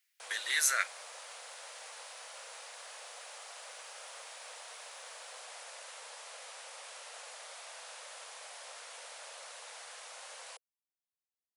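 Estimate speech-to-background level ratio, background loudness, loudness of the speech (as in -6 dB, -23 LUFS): 15.5 dB, -46.5 LUFS, -31.0 LUFS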